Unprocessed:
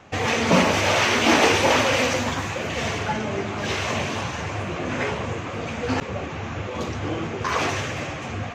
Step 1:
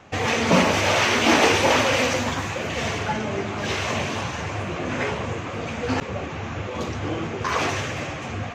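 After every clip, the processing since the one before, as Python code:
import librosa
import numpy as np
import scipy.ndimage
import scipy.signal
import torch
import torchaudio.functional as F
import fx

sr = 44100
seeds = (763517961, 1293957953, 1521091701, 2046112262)

y = x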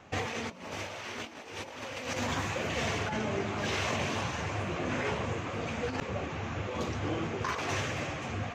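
y = fx.over_compress(x, sr, threshold_db=-25.0, ratio=-0.5)
y = F.gain(torch.from_numpy(y), -8.0).numpy()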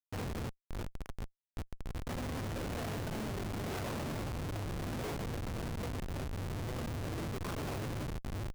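y = fx.quant_dither(x, sr, seeds[0], bits=6, dither='triangular')
y = fx.schmitt(y, sr, flips_db=-27.5)
y = F.gain(torch.from_numpy(y), -5.5).numpy()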